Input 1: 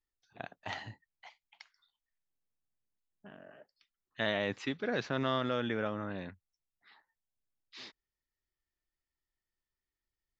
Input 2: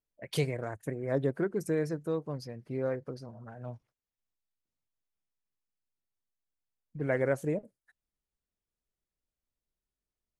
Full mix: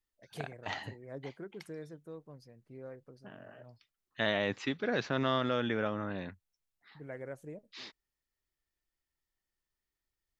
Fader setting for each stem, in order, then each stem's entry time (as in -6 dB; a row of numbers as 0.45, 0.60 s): +1.5, -14.5 dB; 0.00, 0.00 s